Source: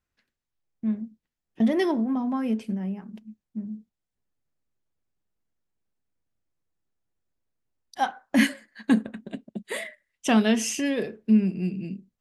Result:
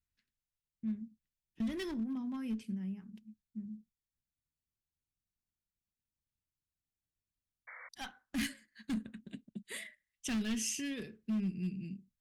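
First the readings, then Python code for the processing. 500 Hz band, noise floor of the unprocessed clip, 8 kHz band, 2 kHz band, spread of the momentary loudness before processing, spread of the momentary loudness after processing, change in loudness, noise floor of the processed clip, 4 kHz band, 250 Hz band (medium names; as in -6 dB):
-19.5 dB, under -85 dBFS, -7.0 dB, -14.0 dB, 17 LU, 16 LU, -13.5 dB, under -85 dBFS, -10.0 dB, -13.0 dB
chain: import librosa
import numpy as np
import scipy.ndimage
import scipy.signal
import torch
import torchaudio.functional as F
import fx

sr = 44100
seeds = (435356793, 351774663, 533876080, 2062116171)

y = fx.spec_paint(x, sr, seeds[0], shape='noise', start_s=7.67, length_s=0.22, low_hz=470.0, high_hz=2300.0, level_db=-37.0)
y = np.clip(10.0 ** (20.5 / 20.0) * y, -1.0, 1.0) / 10.0 ** (20.5 / 20.0)
y = fx.tone_stack(y, sr, knobs='6-0-2')
y = y * 10.0 ** (8.0 / 20.0)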